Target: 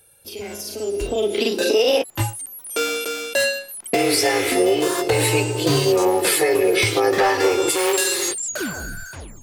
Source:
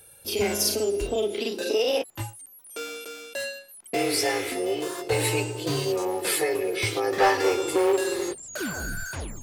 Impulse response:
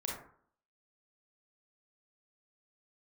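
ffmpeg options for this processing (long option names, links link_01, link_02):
-filter_complex "[0:a]asplit=3[link_01][link_02][link_03];[link_01]afade=type=out:start_time=7.69:duration=0.02[link_04];[link_02]tiltshelf=frequency=1400:gain=-8.5,afade=type=in:start_time=7.69:duration=0.02,afade=type=out:start_time=8.51:duration=0.02[link_05];[link_03]afade=type=in:start_time=8.51:duration=0.02[link_06];[link_04][link_05][link_06]amix=inputs=3:normalize=0,alimiter=limit=-20.5dB:level=0:latency=1:release=376,dynaudnorm=framelen=110:gausssize=21:maxgain=16dB,volume=-3dB"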